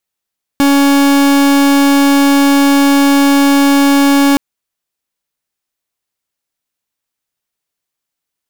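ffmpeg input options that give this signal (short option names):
-f lavfi -i "aevalsrc='0.376*(2*lt(mod(280*t,1),0.43)-1)':d=3.77:s=44100"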